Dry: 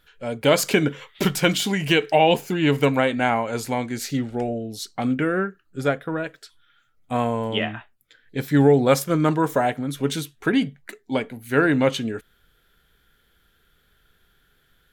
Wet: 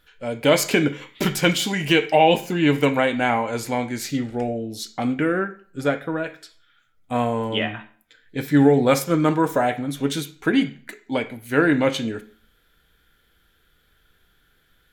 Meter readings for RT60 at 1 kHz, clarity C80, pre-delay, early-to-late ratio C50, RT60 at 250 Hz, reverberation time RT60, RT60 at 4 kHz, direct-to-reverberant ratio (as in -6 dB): 0.45 s, 19.0 dB, 3 ms, 14.5 dB, 0.50 s, 0.45 s, 0.40 s, 6.5 dB